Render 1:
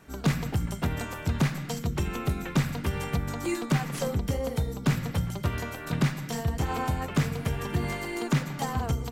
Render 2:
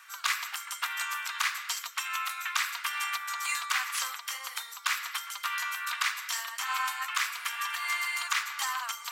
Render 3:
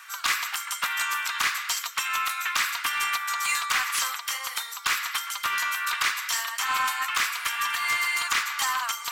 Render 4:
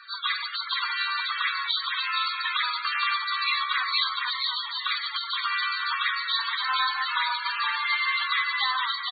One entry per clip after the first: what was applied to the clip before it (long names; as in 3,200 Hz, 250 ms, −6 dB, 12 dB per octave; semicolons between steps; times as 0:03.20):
elliptic high-pass filter 1,100 Hz, stop band 80 dB; reversed playback; upward compression, threshold −43 dBFS; reversed playback; level +7 dB
soft clipping −24 dBFS, distortion −15 dB; level +7 dB
hearing-aid frequency compression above 3,200 Hz 4 to 1; echo with shifted repeats 469 ms, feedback 38%, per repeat −73 Hz, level −3 dB; spectral peaks only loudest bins 32